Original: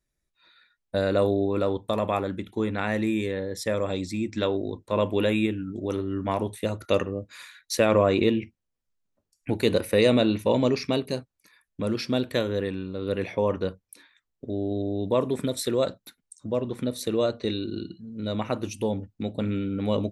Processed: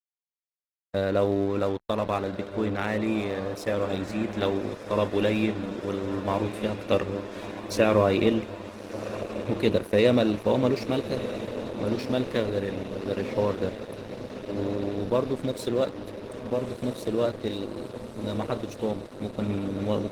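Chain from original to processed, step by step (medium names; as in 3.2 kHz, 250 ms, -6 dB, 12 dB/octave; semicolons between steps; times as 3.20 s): treble shelf 6.2 kHz -7.5 dB; echo that smears into a reverb 1300 ms, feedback 77%, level -9.5 dB; crossover distortion -39.5 dBFS; Opus 16 kbps 48 kHz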